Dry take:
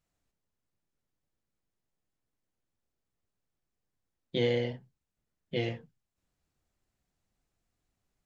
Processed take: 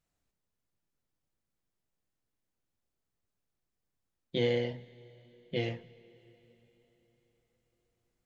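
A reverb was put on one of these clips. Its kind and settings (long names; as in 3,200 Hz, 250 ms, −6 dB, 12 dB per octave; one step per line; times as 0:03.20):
dense smooth reverb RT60 4.5 s, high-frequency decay 0.9×, DRR 19 dB
level −1 dB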